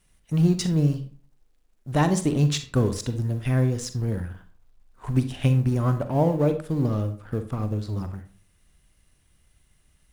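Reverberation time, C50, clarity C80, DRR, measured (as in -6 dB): 0.45 s, 11.0 dB, 16.5 dB, 9.0 dB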